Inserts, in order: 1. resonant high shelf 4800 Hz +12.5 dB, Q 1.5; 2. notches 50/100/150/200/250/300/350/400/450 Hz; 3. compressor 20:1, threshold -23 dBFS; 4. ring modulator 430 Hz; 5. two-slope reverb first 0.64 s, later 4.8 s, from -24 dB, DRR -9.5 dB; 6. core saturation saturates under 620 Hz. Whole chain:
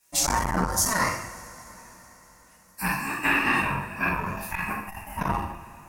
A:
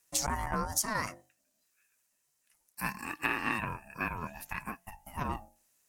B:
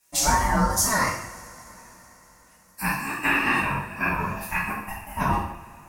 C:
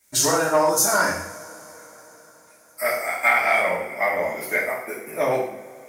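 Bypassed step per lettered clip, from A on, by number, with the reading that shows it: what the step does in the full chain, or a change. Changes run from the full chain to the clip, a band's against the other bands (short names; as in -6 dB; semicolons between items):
5, momentary loudness spread change -3 LU; 6, momentary loudness spread change -2 LU; 4, momentary loudness spread change -2 LU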